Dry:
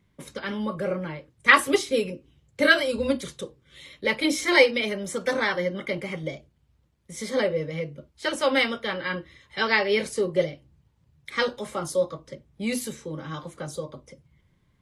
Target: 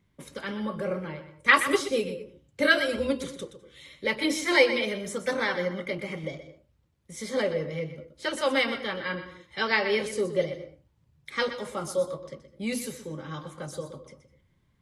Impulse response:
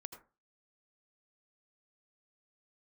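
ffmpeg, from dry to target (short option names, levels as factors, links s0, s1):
-filter_complex "[0:a]asplit=2[s0][s1];[1:a]atrim=start_sample=2205,adelay=123[s2];[s1][s2]afir=irnorm=-1:irlink=0,volume=0.501[s3];[s0][s3]amix=inputs=2:normalize=0,volume=0.708"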